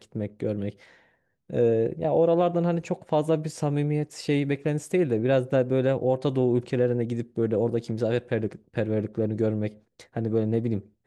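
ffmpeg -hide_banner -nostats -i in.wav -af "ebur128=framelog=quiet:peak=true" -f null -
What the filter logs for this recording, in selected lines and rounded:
Integrated loudness:
  I:         -26.0 LUFS
  Threshold: -36.3 LUFS
Loudness range:
  LRA:         3.2 LU
  Threshold: -45.8 LUFS
  LRA low:   -28.0 LUFS
  LRA high:  -24.8 LUFS
True peak:
  Peak:      -11.0 dBFS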